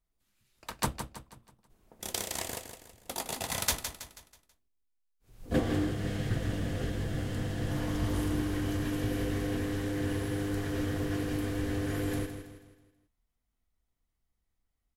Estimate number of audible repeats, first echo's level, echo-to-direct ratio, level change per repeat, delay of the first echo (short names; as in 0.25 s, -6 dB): 4, -9.0 dB, -8.0 dB, -7.5 dB, 0.162 s